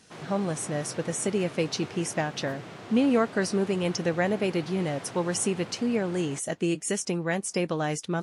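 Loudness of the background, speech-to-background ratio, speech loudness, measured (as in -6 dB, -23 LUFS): -42.5 LUFS, 14.5 dB, -28.0 LUFS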